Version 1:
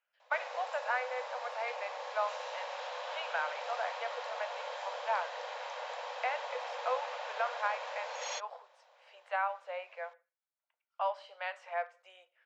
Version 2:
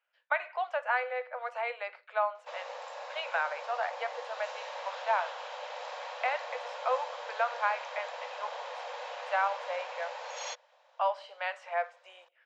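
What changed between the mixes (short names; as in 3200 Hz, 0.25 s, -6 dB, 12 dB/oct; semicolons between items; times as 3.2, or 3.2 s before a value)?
speech +4.0 dB; background: entry +2.15 s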